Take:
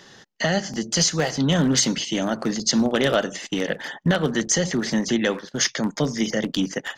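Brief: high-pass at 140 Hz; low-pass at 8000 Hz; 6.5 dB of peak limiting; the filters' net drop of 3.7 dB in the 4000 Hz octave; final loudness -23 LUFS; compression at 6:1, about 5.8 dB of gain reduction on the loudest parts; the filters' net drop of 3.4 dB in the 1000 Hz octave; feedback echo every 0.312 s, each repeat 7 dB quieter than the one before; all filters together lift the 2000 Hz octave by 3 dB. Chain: HPF 140 Hz; LPF 8000 Hz; bell 1000 Hz -7 dB; bell 2000 Hz +7 dB; bell 4000 Hz -7 dB; compressor 6:1, threshold -23 dBFS; limiter -19 dBFS; feedback echo 0.312 s, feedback 45%, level -7 dB; gain +5.5 dB

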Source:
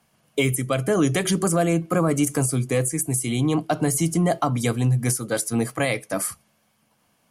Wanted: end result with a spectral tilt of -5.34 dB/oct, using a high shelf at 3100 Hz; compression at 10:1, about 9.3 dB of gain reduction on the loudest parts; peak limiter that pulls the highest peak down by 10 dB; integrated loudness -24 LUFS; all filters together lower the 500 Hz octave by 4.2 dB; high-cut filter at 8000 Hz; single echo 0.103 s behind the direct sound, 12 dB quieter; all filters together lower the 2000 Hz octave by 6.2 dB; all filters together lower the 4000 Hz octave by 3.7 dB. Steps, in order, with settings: LPF 8000 Hz; bell 500 Hz -5 dB; bell 2000 Hz -7.5 dB; high shelf 3100 Hz +3 dB; bell 4000 Hz -4 dB; compressor 10:1, threshold -27 dBFS; limiter -27 dBFS; echo 0.103 s -12 dB; gain +11.5 dB

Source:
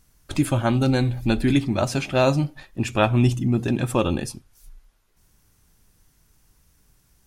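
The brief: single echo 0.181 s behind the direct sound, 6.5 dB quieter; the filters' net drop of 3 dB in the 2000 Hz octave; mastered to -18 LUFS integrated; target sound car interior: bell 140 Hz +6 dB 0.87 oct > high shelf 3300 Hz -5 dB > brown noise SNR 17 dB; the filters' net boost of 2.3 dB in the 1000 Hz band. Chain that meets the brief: bell 140 Hz +6 dB 0.87 oct; bell 1000 Hz +4.5 dB; bell 2000 Hz -4 dB; high shelf 3300 Hz -5 dB; echo 0.181 s -6.5 dB; brown noise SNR 17 dB; gain +0.5 dB

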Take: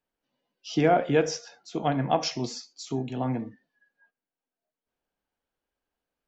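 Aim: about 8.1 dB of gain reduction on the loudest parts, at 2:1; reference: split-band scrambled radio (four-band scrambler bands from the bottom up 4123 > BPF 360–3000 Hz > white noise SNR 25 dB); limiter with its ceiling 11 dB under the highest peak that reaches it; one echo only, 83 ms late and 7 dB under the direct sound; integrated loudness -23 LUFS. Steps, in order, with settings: compressor 2:1, threshold -31 dBFS; limiter -28 dBFS; echo 83 ms -7 dB; four-band scrambler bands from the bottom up 4123; BPF 360–3000 Hz; white noise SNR 25 dB; gain +13 dB

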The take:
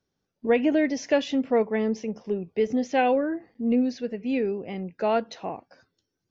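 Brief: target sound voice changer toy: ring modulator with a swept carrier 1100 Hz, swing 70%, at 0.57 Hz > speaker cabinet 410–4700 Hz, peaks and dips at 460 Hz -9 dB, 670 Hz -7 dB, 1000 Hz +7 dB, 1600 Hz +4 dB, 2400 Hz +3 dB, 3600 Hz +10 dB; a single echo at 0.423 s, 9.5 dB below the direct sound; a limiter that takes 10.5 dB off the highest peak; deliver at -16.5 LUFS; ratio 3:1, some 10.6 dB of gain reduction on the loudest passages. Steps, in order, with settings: compressor 3:1, threshold -32 dBFS; limiter -30 dBFS; echo 0.423 s -9.5 dB; ring modulator with a swept carrier 1100 Hz, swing 70%, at 0.57 Hz; speaker cabinet 410–4700 Hz, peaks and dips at 460 Hz -9 dB, 670 Hz -7 dB, 1000 Hz +7 dB, 1600 Hz +4 dB, 2400 Hz +3 dB, 3600 Hz +10 dB; gain +21 dB

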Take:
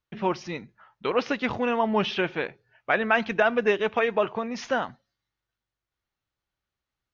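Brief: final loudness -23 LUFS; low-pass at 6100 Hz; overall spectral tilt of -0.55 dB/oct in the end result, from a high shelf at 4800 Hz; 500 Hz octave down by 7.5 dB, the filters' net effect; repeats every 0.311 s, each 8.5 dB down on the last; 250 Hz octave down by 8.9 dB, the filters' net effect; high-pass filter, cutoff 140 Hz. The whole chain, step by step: HPF 140 Hz; LPF 6100 Hz; bell 250 Hz -8.5 dB; bell 500 Hz -7.5 dB; high shelf 4800 Hz +6.5 dB; feedback echo 0.311 s, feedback 38%, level -8.5 dB; gain +5.5 dB

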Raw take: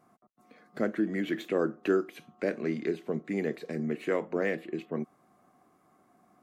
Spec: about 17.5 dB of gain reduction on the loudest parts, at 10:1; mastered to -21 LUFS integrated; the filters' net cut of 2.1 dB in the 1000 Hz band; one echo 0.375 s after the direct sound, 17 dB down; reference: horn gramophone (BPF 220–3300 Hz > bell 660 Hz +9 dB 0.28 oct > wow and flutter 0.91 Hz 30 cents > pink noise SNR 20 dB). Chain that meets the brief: bell 1000 Hz -7.5 dB; compressor 10:1, threshold -41 dBFS; BPF 220–3300 Hz; bell 660 Hz +9 dB 0.28 oct; echo 0.375 s -17 dB; wow and flutter 0.91 Hz 30 cents; pink noise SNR 20 dB; gain +26 dB

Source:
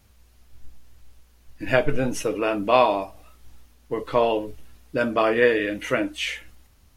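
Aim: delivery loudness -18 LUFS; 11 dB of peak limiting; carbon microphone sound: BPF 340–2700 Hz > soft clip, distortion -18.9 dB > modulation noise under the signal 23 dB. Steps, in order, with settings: limiter -14 dBFS; BPF 340–2700 Hz; soft clip -17.5 dBFS; modulation noise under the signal 23 dB; gain +11.5 dB

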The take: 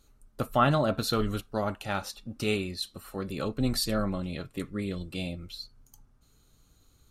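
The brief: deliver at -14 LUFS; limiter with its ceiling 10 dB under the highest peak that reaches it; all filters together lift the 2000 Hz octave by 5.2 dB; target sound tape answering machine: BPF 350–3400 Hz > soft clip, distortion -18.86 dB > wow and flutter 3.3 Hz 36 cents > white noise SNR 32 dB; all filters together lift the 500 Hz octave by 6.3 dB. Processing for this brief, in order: bell 500 Hz +8.5 dB; bell 2000 Hz +7.5 dB; limiter -16.5 dBFS; BPF 350–3400 Hz; soft clip -19.5 dBFS; wow and flutter 3.3 Hz 36 cents; white noise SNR 32 dB; gain +19 dB

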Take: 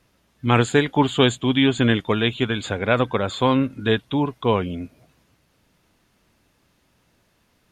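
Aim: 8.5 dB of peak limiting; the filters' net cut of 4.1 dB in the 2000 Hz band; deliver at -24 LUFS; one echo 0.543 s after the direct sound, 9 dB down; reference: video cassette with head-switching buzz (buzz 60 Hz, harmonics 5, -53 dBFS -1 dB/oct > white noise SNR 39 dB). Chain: bell 2000 Hz -5.5 dB; limiter -13 dBFS; echo 0.543 s -9 dB; buzz 60 Hz, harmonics 5, -53 dBFS -1 dB/oct; white noise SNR 39 dB; gain +0.5 dB

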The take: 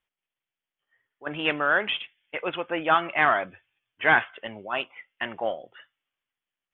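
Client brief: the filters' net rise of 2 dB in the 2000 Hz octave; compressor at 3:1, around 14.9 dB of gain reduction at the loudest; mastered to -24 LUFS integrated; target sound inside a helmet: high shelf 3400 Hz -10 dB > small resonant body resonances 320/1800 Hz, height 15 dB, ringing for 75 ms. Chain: bell 2000 Hz +5.5 dB; compressor 3:1, threshold -33 dBFS; high shelf 3400 Hz -10 dB; small resonant body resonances 320/1800 Hz, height 15 dB, ringing for 75 ms; gain +8.5 dB

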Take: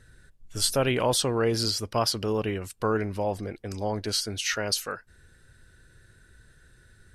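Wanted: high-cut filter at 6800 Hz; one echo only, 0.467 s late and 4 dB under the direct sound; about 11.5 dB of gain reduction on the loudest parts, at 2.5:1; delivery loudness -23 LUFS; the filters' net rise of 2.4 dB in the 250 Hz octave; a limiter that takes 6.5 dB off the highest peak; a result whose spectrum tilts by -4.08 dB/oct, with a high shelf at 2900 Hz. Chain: LPF 6800 Hz; bell 250 Hz +3 dB; high shelf 2900 Hz +4 dB; compressor 2.5:1, threshold -37 dBFS; limiter -27 dBFS; echo 0.467 s -4 dB; gain +13.5 dB

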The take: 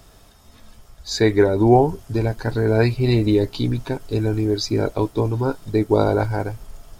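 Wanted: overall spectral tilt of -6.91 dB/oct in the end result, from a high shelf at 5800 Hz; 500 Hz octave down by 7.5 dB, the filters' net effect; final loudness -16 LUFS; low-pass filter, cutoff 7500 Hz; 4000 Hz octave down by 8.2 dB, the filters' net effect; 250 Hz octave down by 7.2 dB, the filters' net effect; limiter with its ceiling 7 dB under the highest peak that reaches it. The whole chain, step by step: LPF 7500 Hz; bell 250 Hz -7 dB; bell 500 Hz -7 dB; bell 4000 Hz -7.5 dB; high shelf 5800 Hz -4 dB; gain +10.5 dB; limiter -3.5 dBFS

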